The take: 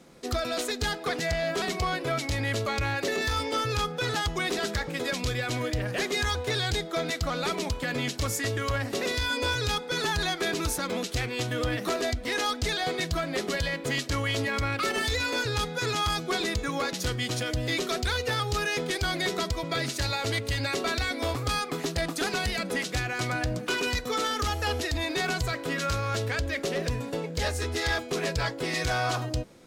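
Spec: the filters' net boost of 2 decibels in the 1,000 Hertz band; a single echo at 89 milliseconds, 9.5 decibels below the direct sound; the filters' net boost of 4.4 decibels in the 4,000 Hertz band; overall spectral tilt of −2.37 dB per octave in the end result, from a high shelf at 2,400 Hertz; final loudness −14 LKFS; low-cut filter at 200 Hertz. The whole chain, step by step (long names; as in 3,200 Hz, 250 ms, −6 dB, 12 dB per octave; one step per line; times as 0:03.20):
high-pass filter 200 Hz
parametric band 1,000 Hz +3 dB
high-shelf EQ 2,400 Hz −3.5 dB
parametric band 4,000 Hz +8 dB
single-tap delay 89 ms −9.5 dB
level +13 dB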